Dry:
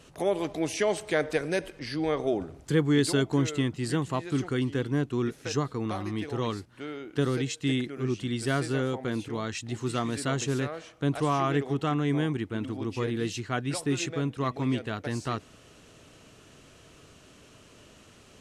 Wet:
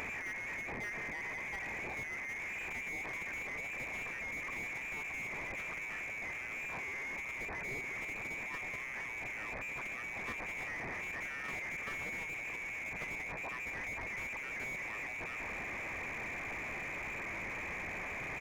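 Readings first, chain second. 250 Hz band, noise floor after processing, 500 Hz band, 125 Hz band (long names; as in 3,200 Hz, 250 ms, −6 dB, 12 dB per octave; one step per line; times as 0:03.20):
−23.5 dB, −43 dBFS, −19.5 dB, −23.0 dB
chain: linear delta modulator 16 kbit/s, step −27 dBFS
parametric band 1,100 Hz −9.5 dB 0.44 octaves
single-tap delay 490 ms −18 dB
brickwall limiter −22.5 dBFS, peak gain reduction 9.5 dB
output level in coarse steps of 10 dB
voice inversion scrambler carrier 2,500 Hz
slew-rate limiting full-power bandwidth 22 Hz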